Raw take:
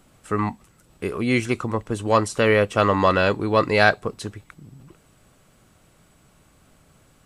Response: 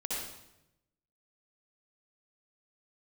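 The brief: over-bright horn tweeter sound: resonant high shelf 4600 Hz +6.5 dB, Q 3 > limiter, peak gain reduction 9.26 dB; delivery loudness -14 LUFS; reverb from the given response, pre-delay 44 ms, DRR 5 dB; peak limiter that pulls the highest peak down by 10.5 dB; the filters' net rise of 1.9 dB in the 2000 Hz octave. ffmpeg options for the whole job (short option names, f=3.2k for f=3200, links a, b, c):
-filter_complex "[0:a]equalizer=f=2k:t=o:g=4,alimiter=limit=-10.5dB:level=0:latency=1,asplit=2[a][b];[1:a]atrim=start_sample=2205,adelay=44[c];[b][c]afir=irnorm=-1:irlink=0,volume=-9dB[d];[a][d]amix=inputs=2:normalize=0,highshelf=f=4.6k:t=q:w=3:g=6.5,volume=13.5dB,alimiter=limit=-3.5dB:level=0:latency=1"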